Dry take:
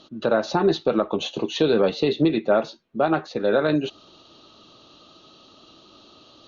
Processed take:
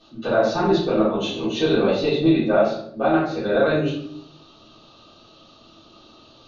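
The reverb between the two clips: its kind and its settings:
rectangular room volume 110 cubic metres, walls mixed, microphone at 3.6 metres
level −11.5 dB

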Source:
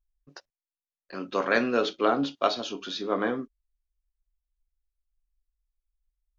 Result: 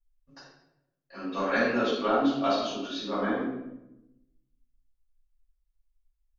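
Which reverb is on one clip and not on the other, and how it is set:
rectangular room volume 290 cubic metres, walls mixed, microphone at 6.4 metres
level −16 dB

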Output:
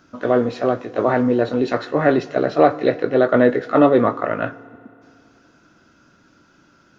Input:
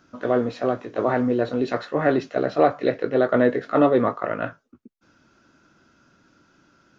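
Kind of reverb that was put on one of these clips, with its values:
feedback delay network reverb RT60 2.5 s, low-frequency decay 1.1×, high-frequency decay 0.85×, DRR 18 dB
level +4 dB

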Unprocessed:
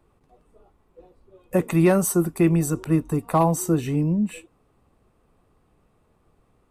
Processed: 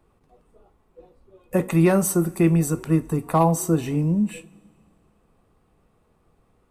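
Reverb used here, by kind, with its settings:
coupled-rooms reverb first 0.27 s, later 2.1 s, from −18 dB, DRR 12 dB

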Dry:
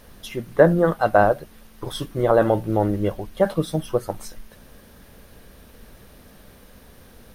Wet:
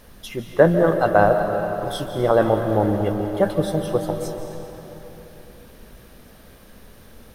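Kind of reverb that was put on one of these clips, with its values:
comb and all-pass reverb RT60 3.6 s, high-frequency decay 0.8×, pre-delay 110 ms, DRR 5 dB

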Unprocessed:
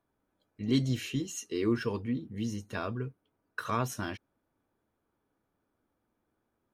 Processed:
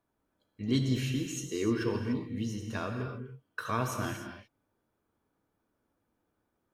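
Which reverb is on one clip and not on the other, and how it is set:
reverb whose tail is shaped and stops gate 320 ms flat, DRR 4 dB
level −1 dB

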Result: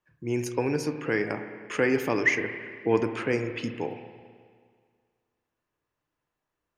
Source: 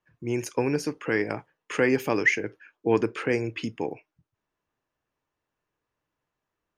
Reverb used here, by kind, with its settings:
spring reverb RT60 1.9 s, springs 33/53 ms, chirp 55 ms, DRR 7.5 dB
level −1.5 dB

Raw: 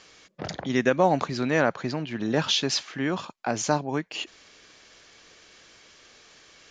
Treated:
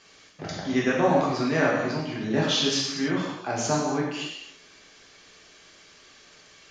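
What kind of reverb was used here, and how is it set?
reverb whose tail is shaped and stops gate 350 ms falling, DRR −5 dB
level −5.5 dB

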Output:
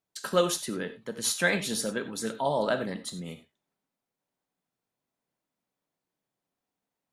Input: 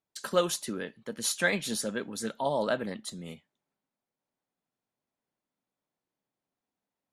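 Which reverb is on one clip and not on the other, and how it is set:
reverb whose tail is shaped and stops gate 120 ms flat, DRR 9 dB
level +1.5 dB

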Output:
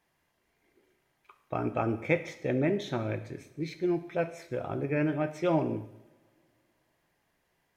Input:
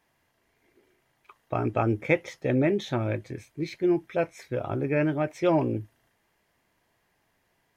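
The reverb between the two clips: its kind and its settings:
coupled-rooms reverb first 0.79 s, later 3 s, from −25 dB, DRR 9 dB
level −4 dB

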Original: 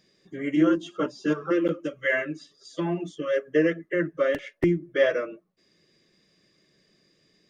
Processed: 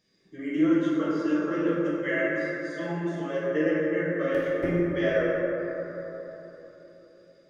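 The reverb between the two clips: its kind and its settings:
dense smooth reverb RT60 3.9 s, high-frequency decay 0.3×, DRR −7.5 dB
level −9 dB

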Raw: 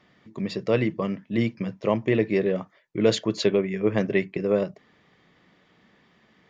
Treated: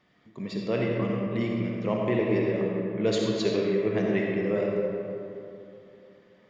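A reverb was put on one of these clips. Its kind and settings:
comb and all-pass reverb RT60 2.9 s, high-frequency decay 0.45×, pre-delay 20 ms, DRR −2 dB
level −6.5 dB

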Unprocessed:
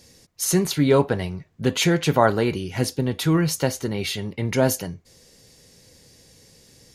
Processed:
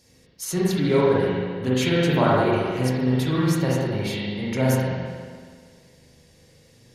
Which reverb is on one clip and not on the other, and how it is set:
spring reverb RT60 1.8 s, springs 39/47 ms, chirp 35 ms, DRR −6.5 dB
level −7.5 dB

